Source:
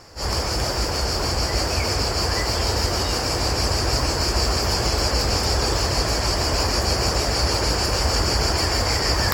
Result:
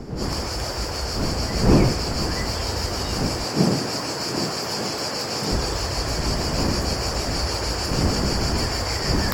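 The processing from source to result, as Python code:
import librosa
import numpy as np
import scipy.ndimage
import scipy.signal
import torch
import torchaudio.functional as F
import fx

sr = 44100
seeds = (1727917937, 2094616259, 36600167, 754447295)

y = fx.dmg_wind(x, sr, seeds[0], corner_hz=270.0, level_db=-22.0)
y = fx.highpass(y, sr, hz=130.0, slope=24, at=(3.44, 5.52))
y = F.gain(torch.from_numpy(y), -4.0).numpy()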